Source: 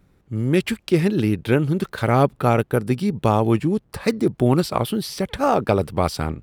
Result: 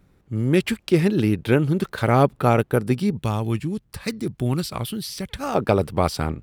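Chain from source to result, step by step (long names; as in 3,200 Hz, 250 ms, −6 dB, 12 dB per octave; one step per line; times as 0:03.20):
0:03.17–0:05.55: parametric band 580 Hz −11 dB 2.9 octaves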